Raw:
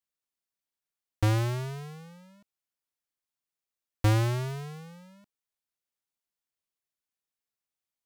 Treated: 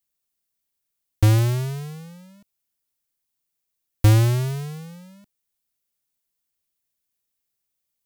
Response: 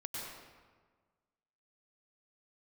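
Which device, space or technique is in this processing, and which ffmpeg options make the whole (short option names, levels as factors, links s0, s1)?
smiley-face EQ: -af "lowshelf=f=140:g=5.5,equalizer=f=1100:t=o:w=2:g=-4.5,highshelf=f=9700:g=9,volume=2"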